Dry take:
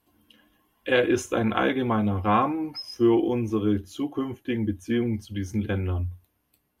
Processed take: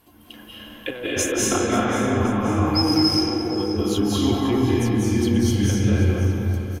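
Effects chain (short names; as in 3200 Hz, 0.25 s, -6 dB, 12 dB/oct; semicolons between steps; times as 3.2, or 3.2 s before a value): negative-ratio compressor -33 dBFS, ratio -1; 3.04–3.53 Chebyshev band-pass 350–950 Hz, order 4; feedback echo 0.531 s, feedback 47%, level -13.5 dB; reverb RT60 2.8 s, pre-delay 0.157 s, DRR -7 dB; gain +5 dB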